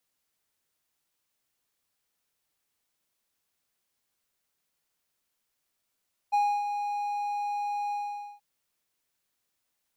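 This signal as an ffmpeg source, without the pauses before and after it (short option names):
-f lavfi -i "aevalsrc='0.119*(1-4*abs(mod(822*t+0.25,1)-0.5))':d=2.08:s=44100,afade=t=in:d=0.021,afade=t=out:st=0.021:d=0.288:silence=0.398,afade=t=out:st=1.6:d=0.48"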